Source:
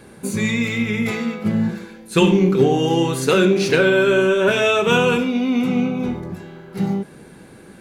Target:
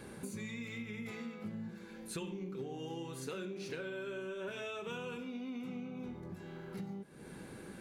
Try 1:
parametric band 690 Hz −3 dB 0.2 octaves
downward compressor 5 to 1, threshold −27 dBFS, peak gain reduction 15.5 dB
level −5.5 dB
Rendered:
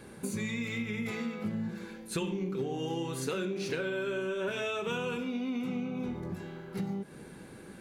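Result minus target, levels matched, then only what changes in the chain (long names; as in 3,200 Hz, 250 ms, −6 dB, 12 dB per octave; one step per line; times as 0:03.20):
downward compressor: peak gain reduction −8.5 dB
change: downward compressor 5 to 1, threshold −37.5 dBFS, peak gain reduction 24 dB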